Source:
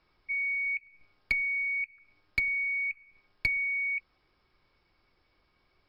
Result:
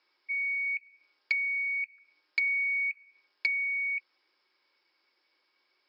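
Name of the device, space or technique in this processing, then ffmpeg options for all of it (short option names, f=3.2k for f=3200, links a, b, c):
phone speaker on a table: -filter_complex "[0:a]asettb=1/sr,asplit=3[a][b][c];[a]atrim=end=2.414[d];[b]atrim=start=2.41:end=2.9,asetpts=PTS-STARTPTS,afade=t=in:d=0.004:c=qsin,afade=t=out:st=0.486:d=0.004:c=qsin,equalizer=f=970:t=o:w=1:g=12[e];[c]atrim=start=2.896[f];[d][e]acrossfade=d=0.004:c1=hsin:c2=qsin[g];[g][f]acrossfade=d=0.004:c1=qsin:c2=hsin,highpass=f=370:w=0.5412,highpass=f=370:w=1.3066,equalizer=f=440:t=q:w=4:g=-8,equalizer=f=690:t=q:w=4:g=-10,equalizer=f=1.2k:t=q:w=4:g=-6,equalizer=f=5k:t=q:w=4:g=5,lowpass=f=6.5k:w=0.5412,lowpass=f=6.5k:w=1.3066"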